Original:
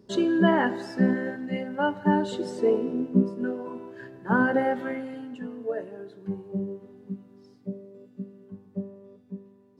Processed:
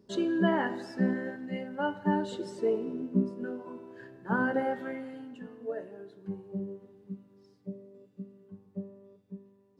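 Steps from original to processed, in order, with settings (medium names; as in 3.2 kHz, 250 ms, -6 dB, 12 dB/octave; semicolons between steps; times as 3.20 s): de-hum 123.9 Hz, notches 30; trim -5.5 dB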